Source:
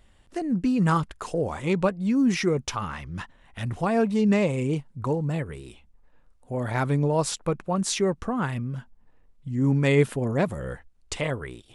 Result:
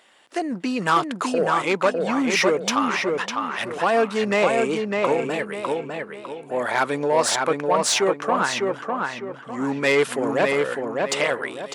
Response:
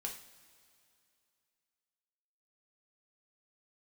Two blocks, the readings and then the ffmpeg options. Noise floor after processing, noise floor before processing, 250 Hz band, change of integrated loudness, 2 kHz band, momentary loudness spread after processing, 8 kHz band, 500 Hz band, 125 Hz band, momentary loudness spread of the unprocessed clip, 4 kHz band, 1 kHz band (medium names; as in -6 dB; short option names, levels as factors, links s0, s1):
-41 dBFS, -58 dBFS, -1.5 dB, +3.5 dB, +10.0 dB, 9 LU, +7.0 dB, +6.0 dB, -10.5 dB, 15 LU, +9.5 dB, +9.0 dB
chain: -filter_complex "[0:a]asplit=2[s0][s1];[s1]highpass=f=720:p=1,volume=7.08,asoftclip=type=tanh:threshold=0.398[s2];[s0][s2]amix=inputs=2:normalize=0,lowpass=f=6000:p=1,volume=0.501,highpass=300,asplit=2[s3][s4];[s4]adelay=603,lowpass=f=3200:p=1,volume=0.708,asplit=2[s5][s6];[s6]adelay=603,lowpass=f=3200:p=1,volume=0.36,asplit=2[s7][s8];[s8]adelay=603,lowpass=f=3200:p=1,volume=0.36,asplit=2[s9][s10];[s10]adelay=603,lowpass=f=3200:p=1,volume=0.36,asplit=2[s11][s12];[s12]adelay=603,lowpass=f=3200:p=1,volume=0.36[s13];[s3][s5][s7][s9][s11][s13]amix=inputs=6:normalize=0"